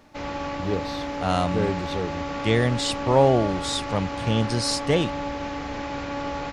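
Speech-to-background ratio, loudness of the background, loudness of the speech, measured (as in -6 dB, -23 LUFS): 6.5 dB, -31.0 LUFS, -24.5 LUFS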